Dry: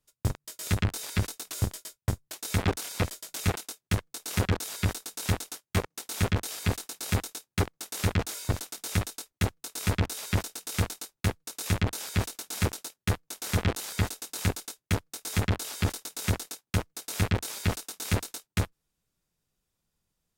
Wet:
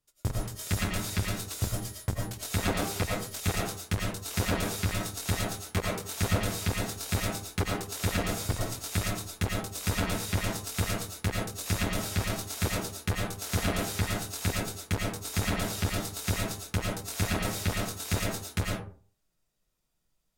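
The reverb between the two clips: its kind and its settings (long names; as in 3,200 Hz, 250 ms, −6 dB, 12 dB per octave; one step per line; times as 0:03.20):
comb and all-pass reverb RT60 0.43 s, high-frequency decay 0.5×, pre-delay 65 ms, DRR −2.5 dB
level −3 dB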